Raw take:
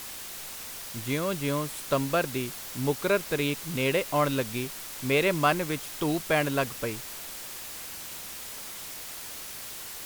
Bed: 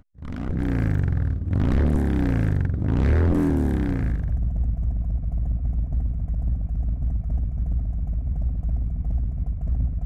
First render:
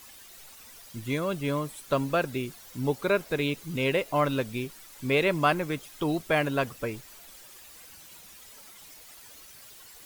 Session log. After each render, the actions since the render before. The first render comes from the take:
broadband denoise 12 dB, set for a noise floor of −40 dBFS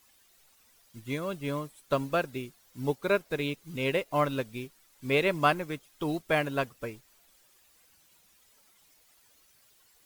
expander for the loud parts 1.5 to 1, over −47 dBFS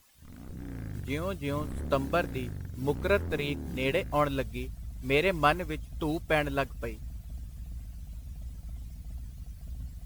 mix in bed −16.5 dB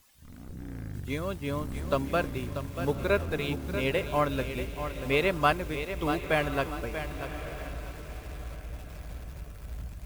feedback delay with all-pass diffusion 1,062 ms, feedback 42%, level −13 dB
feedback echo at a low word length 637 ms, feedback 35%, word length 7 bits, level −9 dB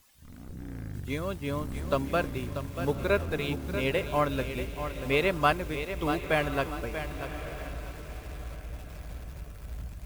no processing that can be heard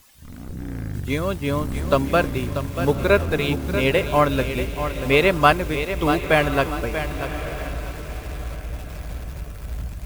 level +9 dB

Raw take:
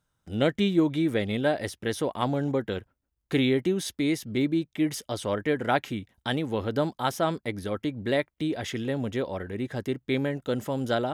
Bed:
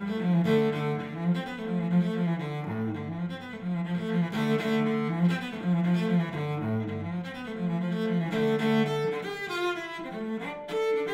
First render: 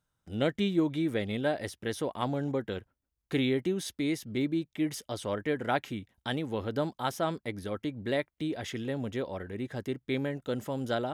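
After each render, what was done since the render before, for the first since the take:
level −4.5 dB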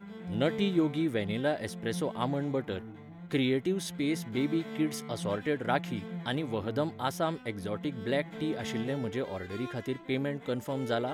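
mix in bed −14 dB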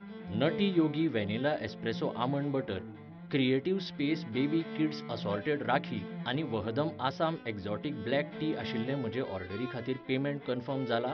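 Butterworth low-pass 5,400 Hz 96 dB per octave
mains-hum notches 60/120/180/240/300/360/420/480/540/600 Hz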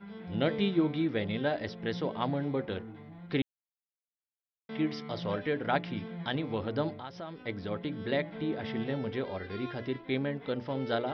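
0:03.42–0:04.69: silence
0:06.99–0:07.44: downward compressor 3 to 1, threshold −41 dBFS
0:08.31–0:08.80: high-shelf EQ 5,100 Hz → 4,200 Hz −11.5 dB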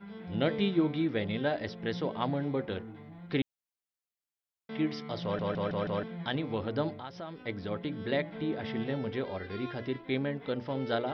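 0:05.23: stutter in place 0.16 s, 5 plays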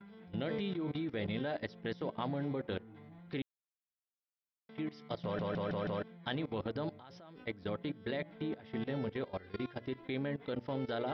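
output level in coarse steps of 18 dB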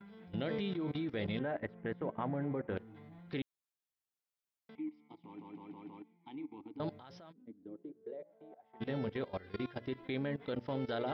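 0:01.39–0:02.77: low-pass filter 2,200 Hz 24 dB per octave
0:04.75–0:06.80: formant filter u
0:07.31–0:08.80: resonant band-pass 210 Hz → 900 Hz, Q 6.4

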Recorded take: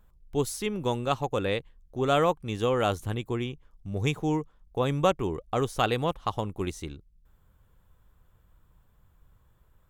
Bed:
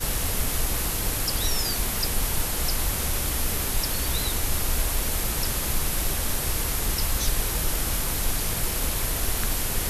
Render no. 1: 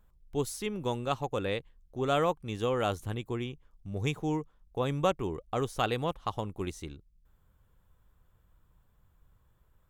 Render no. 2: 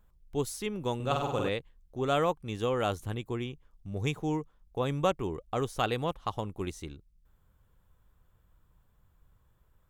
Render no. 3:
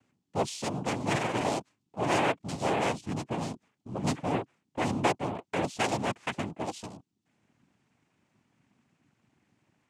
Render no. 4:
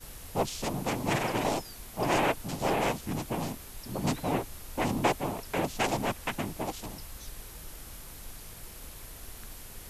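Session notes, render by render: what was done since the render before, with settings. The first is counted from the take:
level −4 dB
0:00.95–0:01.49: flutter between parallel walls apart 8.3 metres, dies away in 0.85 s
cochlear-implant simulation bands 4; in parallel at −10 dB: soft clipping −31 dBFS, distortion −8 dB
mix in bed −19 dB

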